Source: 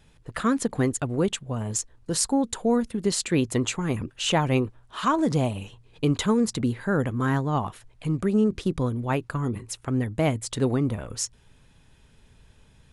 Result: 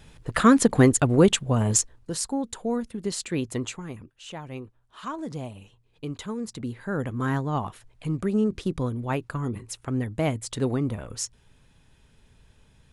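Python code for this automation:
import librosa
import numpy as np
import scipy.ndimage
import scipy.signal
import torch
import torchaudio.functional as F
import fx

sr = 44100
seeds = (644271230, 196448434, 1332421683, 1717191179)

y = fx.gain(x, sr, db=fx.line((1.76, 7.0), (2.16, -5.0), (3.63, -5.0), (4.19, -17.0), (5.08, -11.0), (6.31, -11.0), (7.23, -2.0)))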